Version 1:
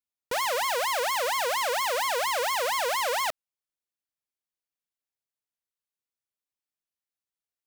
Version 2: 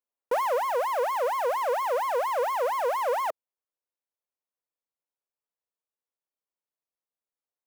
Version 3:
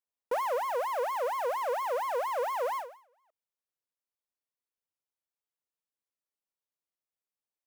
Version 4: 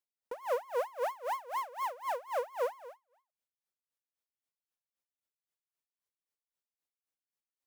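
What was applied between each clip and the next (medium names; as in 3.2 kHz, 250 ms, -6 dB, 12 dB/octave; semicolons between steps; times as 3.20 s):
graphic EQ 125/250/500/1000/4000/8000 Hz -12/+4/+11/+8/-7/-4 dB; gain riding within 4 dB 0.5 s; trim -8 dB
endings held to a fixed fall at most 120 dB/s; trim -4.5 dB
logarithmic tremolo 3.8 Hz, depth 23 dB; trim +1 dB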